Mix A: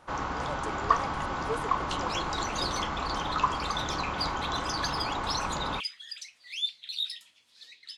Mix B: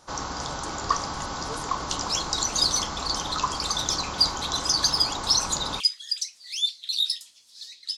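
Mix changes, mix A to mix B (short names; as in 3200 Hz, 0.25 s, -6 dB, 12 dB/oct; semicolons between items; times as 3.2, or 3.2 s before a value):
speech -6.0 dB; master: add resonant high shelf 3600 Hz +12 dB, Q 1.5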